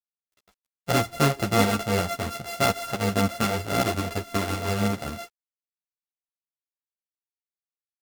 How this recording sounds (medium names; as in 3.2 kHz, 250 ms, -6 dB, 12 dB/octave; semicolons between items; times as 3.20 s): a buzz of ramps at a fixed pitch in blocks of 64 samples; tremolo saw up 5.5 Hz, depth 45%; a quantiser's noise floor 10-bit, dither none; a shimmering, thickened sound